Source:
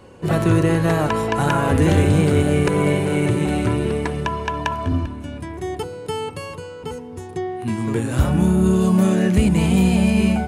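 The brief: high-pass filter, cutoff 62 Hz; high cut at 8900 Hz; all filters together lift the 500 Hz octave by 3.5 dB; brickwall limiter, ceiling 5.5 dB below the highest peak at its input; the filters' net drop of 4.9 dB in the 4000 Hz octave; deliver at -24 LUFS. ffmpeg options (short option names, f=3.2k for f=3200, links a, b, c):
-af "highpass=62,lowpass=8.9k,equalizer=f=500:t=o:g=4.5,equalizer=f=4k:t=o:g=-7.5,volume=-3.5dB,alimiter=limit=-13dB:level=0:latency=1"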